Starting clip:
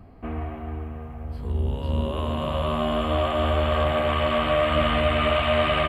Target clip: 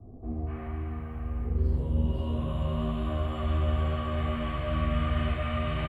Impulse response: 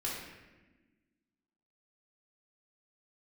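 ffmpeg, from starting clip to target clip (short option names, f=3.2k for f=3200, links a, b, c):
-filter_complex "[0:a]acrossover=split=740|3400[a][b][c];[b]adelay=240[d];[c]adelay=310[e];[a][d][e]amix=inputs=3:normalize=0,acrossover=split=200[f][g];[g]acompressor=threshold=-46dB:ratio=2[h];[f][h]amix=inputs=2:normalize=0[i];[1:a]atrim=start_sample=2205,atrim=end_sample=6174[j];[i][j]afir=irnorm=-1:irlink=0,volume=-1dB"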